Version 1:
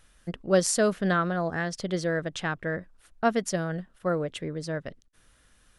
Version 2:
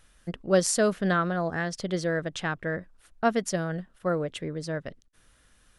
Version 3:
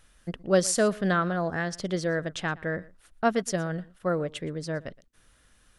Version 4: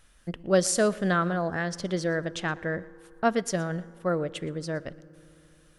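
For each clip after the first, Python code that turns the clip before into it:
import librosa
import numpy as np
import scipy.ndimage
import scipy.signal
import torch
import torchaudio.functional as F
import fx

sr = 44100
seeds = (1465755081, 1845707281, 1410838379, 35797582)

y1 = x
y2 = y1 + 10.0 ** (-22.0 / 20.0) * np.pad(y1, (int(118 * sr / 1000.0), 0))[:len(y1)]
y3 = fx.rev_fdn(y2, sr, rt60_s=3.1, lf_ratio=1.0, hf_ratio=0.4, size_ms=18.0, drr_db=19.5)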